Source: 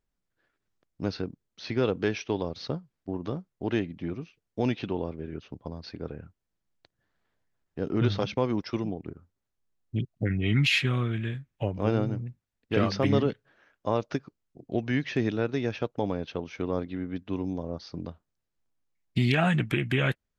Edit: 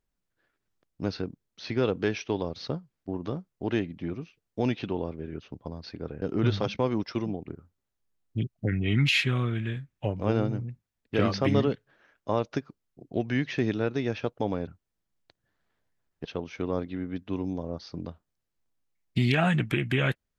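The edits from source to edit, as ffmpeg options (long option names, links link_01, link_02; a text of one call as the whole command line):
ffmpeg -i in.wav -filter_complex "[0:a]asplit=4[link_01][link_02][link_03][link_04];[link_01]atrim=end=6.222[link_05];[link_02]atrim=start=7.798:end=16.252[link_06];[link_03]atrim=start=6.218:end=7.802[link_07];[link_04]atrim=start=16.248[link_08];[link_05][link_06]acrossfade=duration=0.004:curve1=hsin:curve2=hsin[link_09];[link_09][link_07]acrossfade=duration=0.004:curve1=hsin:curve2=hsin[link_10];[link_10][link_08]acrossfade=duration=0.004:curve1=hsin:curve2=hsin" out.wav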